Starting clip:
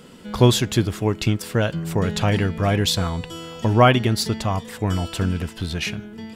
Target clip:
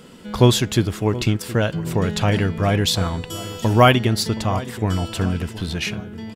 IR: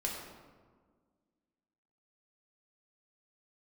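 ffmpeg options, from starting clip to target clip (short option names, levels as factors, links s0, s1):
-filter_complex "[0:a]asettb=1/sr,asplit=3[s0][s1][s2];[s0]atrim=end=3.304[s3];[s1]atrim=start=3.3:end=3.94,asetpts=PTS-STARTPTS,afade=t=in:d=0.004:c=qsin,afade=t=out:st=0.636:d=0.004:c=qsin,aemphasis=mode=production:type=50kf[s4];[s2]atrim=start=3.936[s5];[s3][s4]acrossfade=d=0.004:c1=hsin:c2=qsin[s6];[s6][s5]acrossfade=d=0.004:c1=qsin:c2=hsin,asplit=2[s7][s8];[s8]adelay=722,lowpass=f=1200:p=1,volume=0.168,asplit=2[s9][s10];[s10]adelay=722,lowpass=f=1200:p=1,volume=0.5,asplit=2[s11][s12];[s12]adelay=722,lowpass=f=1200:p=1,volume=0.5,asplit=2[s13][s14];[s14]adelay=722,lowpass=f=1200:p=1,volume=0.5,asplit=2[s15][s16];[s16]adelay=722,lowpass=f=1200:p=1,volume=0.5[s17];[s7][s9][s11][s13][s15][s17]amix=inputs=6:normalize=0,volume=1.12"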